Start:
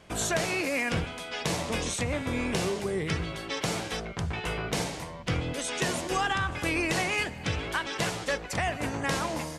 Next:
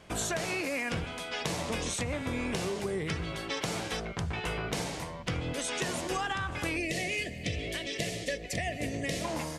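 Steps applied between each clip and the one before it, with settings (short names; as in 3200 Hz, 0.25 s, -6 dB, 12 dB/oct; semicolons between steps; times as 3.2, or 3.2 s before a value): spectral gain 6.76–9.25, 750–1700 Hz -20 dB; compressor, threshold -29 dBFS, peak gain reduction 6 dB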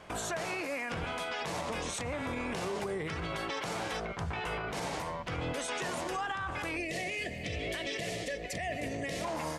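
bell 1000 Hz +8 dB 2.2 oct; limiter -25.5 dBFS, peak gain reduction 11 dB; gain -1.5 dB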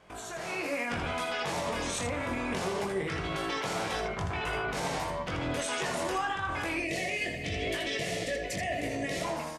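AGC gain up to 9.5 dB; on a send: early reflections 21 ms -4.5 dB, 80 ms -6 dB; on the sum: gain -8 dB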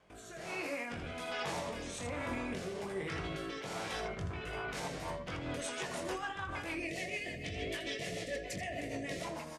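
rotary speaker horn 1.2 Hz, later 6.7 Hz, at 4.63; gain -4.5 dB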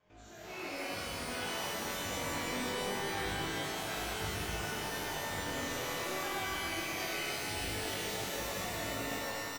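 ending faded out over 0.60 s; downsampling 16000 Hz; shimmer reverb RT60 2.7 s, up +12 st, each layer -2 dB, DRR -7 dB; gain -8.5 dB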